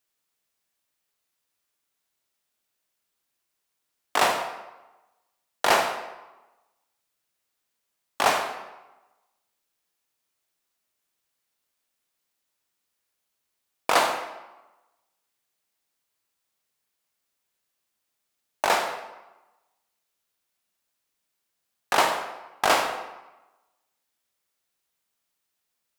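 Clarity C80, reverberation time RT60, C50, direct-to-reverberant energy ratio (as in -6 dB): 8.5 dB, 1.1 s, 7.0 dB, 5.0 dB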